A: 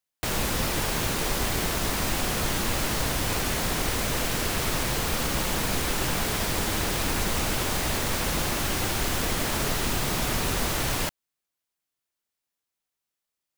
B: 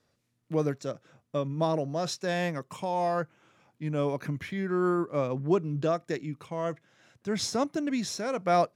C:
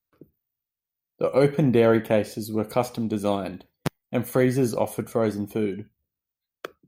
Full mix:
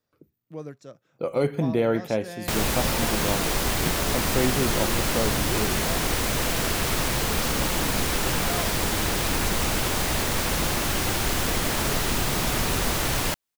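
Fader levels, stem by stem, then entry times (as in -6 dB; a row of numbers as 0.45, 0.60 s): +2.0, -9.5, -4.5 dB; 2.25, 0.00, 0.00 s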